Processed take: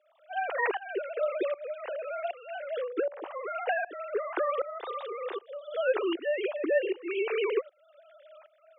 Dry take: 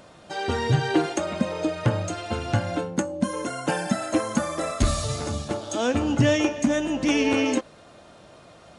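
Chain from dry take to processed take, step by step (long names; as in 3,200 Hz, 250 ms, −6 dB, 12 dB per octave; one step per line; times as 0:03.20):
three sine waves on the formant tracks
shaped tremolo saw up 1.3 Hz, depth 90%
Chebyshev high-pass filter 360 Hz, order 4
level −1 dB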